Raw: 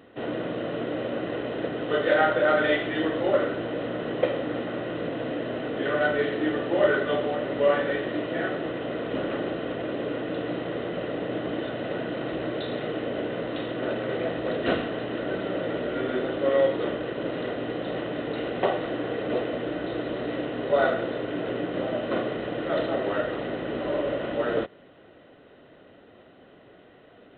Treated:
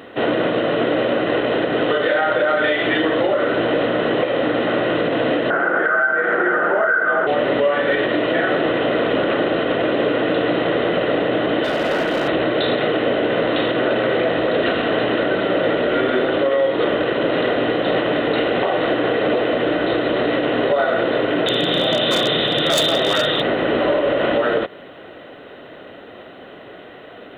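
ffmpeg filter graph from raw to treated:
-filter_complex "[0:a]asettb=1/sr,asplit=3[a][b][c];[a]atrim=end=5.504[d];[b]atrim=start=5.5:end=7.27,asetpts=PTS-STARTPTS,afade=t=in:d=0.004:c=qsin,afade=t=out:st=1.766:d=0.004:c=qsin,lowpass=f=1.4k:t=q:w=8.6,afreqshift=50[e];[c]atrim=start=7.266[f];[d][e]acrossfade=d=0.004:c1=hsin:c2=qsin[g];[g][f]acrossfade=d=0.004:c1=qsin:c2=hsin,asettb=1/sr,asplit=3[h][i][j];[h]atrim=end=11.644[k];[i]atrim=start=11.64:end=12.28,asetpts=PTS-STARTPTS,afade=t=in:d=0.004:c=qsin,afade=t=out:st=0.636:d=0.004:c=qsin,bandreject=f=60:t=h:w=6,bandreject=f=120:t=h:w=6,bandreject=f=180:t=h:w=6,bandreject=f=240:t=h:w=6,bandreject=f=300:t=h:w=6,bandreject=f=360:t=h:w=6,bandreject=f=420:t=h:w=6,bandreject=f=480:t=h:w=6,volume=29dB,asoftclip=hard,volume=-29dB[l];[j]atrim=start=12.276[m];[k][l]acrossfade=d=0.004:c1=hsin:c2=qsin[n];[n][m]acrossfade=d=0.004:c1=qsin:c2=hsin,asettb=1/sr,asplit=3[o][p][q];[o]atrim=end=21.464[r];[p]atrim=start=21.46:end=23.42,asetpts=PTS-STARTPTS,afade=t=in:d=0.004:c=qsin,afade=t=out:st=1.956:d=0.004:c=qsin,lowpass=f=3.6k:t=q:w=16,equalizer=f=150:t=o:w=0.41:g=10.5,aeval=exprs='0.126*(abs(mod(val(0)/0.126+3,4)-2)-1)':c=same[s];[q]atrim=start=23.416[t];[r][s]acrossfade=d=0.004:c1=hsin:c2=qsin[u];[u][t]acrossfade=d=0.004:c1=qsin:c2=hsin,acompressor=threshold=-26dB:ratio=6,lowshelf=f=300:g=-8.5,alimiter=level_in=24dB:limit=-1dB:release=50:level=0:latency=1,volume=-8dB"

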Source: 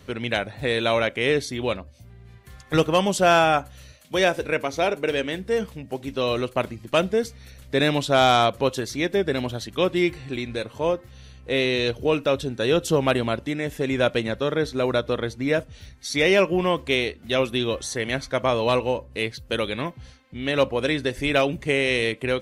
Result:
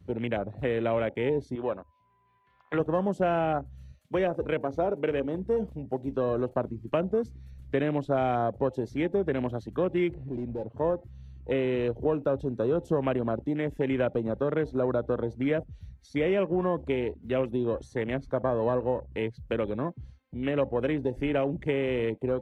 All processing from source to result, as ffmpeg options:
-filter_complex "[0:a]asettb=1/sr,asplit=3[a][b][c];[a]atrim=end=1.554[d];[b]atrim=start=1.55:end=2.8,asetpts=PTS-STARTPTS,afade=t=in:d=0.004:c=qsin,afade=t=out:st=1.246:d=0.004:c=qsin,lowpass=f=3k:w=0.5412,lowpass=f=3k:w=1.3066,aemphasis=mode=production:type=riaa,aeval=exprs='val(0)+0.00355*sin(2*PI*1000*n/s)':c=same[e];[c]atrim=start=2.796[f];[d][e]acrossfade=d=0.004:c1=hsin:c2=qsin[g];[g][f]acrossfade=d=0.004:c1=qsin:c2=hsin,asettb=1/sr,asplit=3[h][i][j];[h]atrim=end=10.144[k];[i]atrim=start=10.14:end=10.78,asetpts=PTS-STARTPTS,afade=t=in:d=0.004:c=qsin,afade=t=out:st=0.636:d=0.004:c=qsin,lowpass=f=1.3k:p=1,volume=29.5dB,asoftclip=hard,volume=-29.5dB[l];[j]atrim=start=10.776[m];[k][l]acrossfade=d=0.004:c1=hsin:c2=qsin[n];[n][m]acrossfade=d=0.004:c1=qsin:c2=hsin,acrossover=split=180|690[o][p][q];[o]acompressor=threshold=-37dB:ratio=4[r];[p]acompressor=threshold=-25dB:ratio=4[s];[q]acompressor=threshold=-33dB:ratio=4[t];[r][s][t]amix=inputs=3:normalize=0,highshelf=f=2.5k:g=-6,afwtdn=0.0141"

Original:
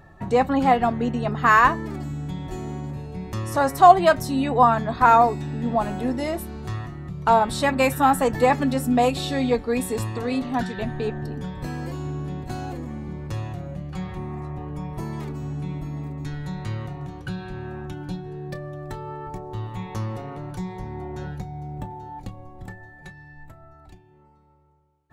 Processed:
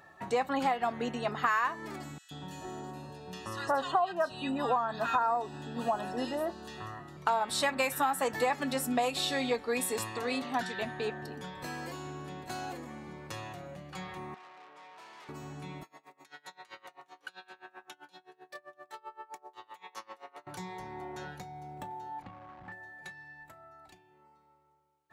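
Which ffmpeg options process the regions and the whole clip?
-filter_complex "[0:a]asettb=1/sr,asplit=3[a][b][c];[a]atrim=end=2.184[d];[b]atrim=start=2.18:end=7.17,asetpts=PTS-STARTPTS,afade=t=in:d=0.004:c=qsin,afade=t=out:st=4.986:d=0.004:c=qsin,acrossover=split=4200[e][f];[f]acompressor=threshold=-53dB:ratio=4:attack=1:release=60[g];[e][g]amix=inputs=2:normalize=0,asuperstop=centerf=2200:order=20:qfactor=5.3,acrossover=split=1900[h][i];[h]adelay=130[j];[j][i]amix=inputs=2:normalize=0,atrim=end_sample=220059[k];[c]atrim=start=7.166[l];[d][k]acrossfade=d=0.004:c1=hsin:c2=qsin[m];[m][l]acrossfade=d=0.004:c1=qsin:c2=hsin,asettb=1/sr,asplit=3[n][o][p];[n]atrim=end=14.344[q];[o]atrim=start=14.34:end=15.29,asetpts=PTS-STARTPTS,afade=t=in:d=0.004:c=qsin,afade=t=out:st=0.946:d=0.004:c=qsin,highpass=600,lowpass=4.7k,aeval=exprs='(tanh(200*val(0)+0.6)-tanh(0.6))/200':c=same[r];[p]atrim=start=15.286[s];[q][r]acrossfade=d=0.004:c1=hsin:c2=qsin[t];[t][s]acrossfade=d=0.004:c1=qsin:c2=hsin,asettb=1/sr,asplit=3[u][v][w];[u]atrim=end=15.834[x];[v]atrim=start=15.83:end=20.47,asetpts=PTS-STARTPTS,afade=t=in:d=0.004:c=qsin,afade=t=out:st=4.636:d=0.004:c=qsin,highpass=530,aeval=exprs='val(0)*pow(10,-25*(0.5-0.5*cos(2*PI*7.7*n/s))/20)':c=same[y];[w]atrim=start=20.466[z];[x][y]acrossfade=d=0.004:c1=hsin:c2=qsin[aa];[aa][z]acrossfade=d=0.004:c1=qsin:c2=hsin,asettb=1/sr,asplit=3[ab][ac][ad];[ab]atrim=end=22.224[ae];[ac]atrim=start=22.22:end=22.72,asetpts=PTS-STARTPTS,afade=t=in:d=0.004:c=qsin,afade=t=out:st=0.496:d=0.004:c=qsin,aeval=exprs='val(0)+0.5*0.00891*sgn(val(0))':c=same,lowpass=1.6k,equalizer=f=440:t=o:w=0.52:g=-13[af];[ad]atrim=start=22.716[ag];[ae][af]acrossfade=d=0.004:c1=hsin:c2=qsin[ah];[ah][ag]acrossfade=d=0.004:c1=qsin:c2=hsin,highpass=f=890:p=1,acompressor=threshold=-25dB:ratio=10"

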